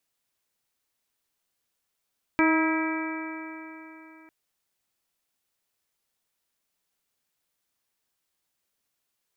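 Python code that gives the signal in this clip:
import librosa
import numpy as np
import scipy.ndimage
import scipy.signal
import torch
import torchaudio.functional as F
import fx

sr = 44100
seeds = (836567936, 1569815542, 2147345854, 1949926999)

y = fx.additive_stiff(sr, length_s=1.9, hz=317.0, level_db=-19.5, upper_db=(-10.5, -7, -9.0, -8.5, -11.5, -6.0), decay_s=3.48, stiffness=0.0018)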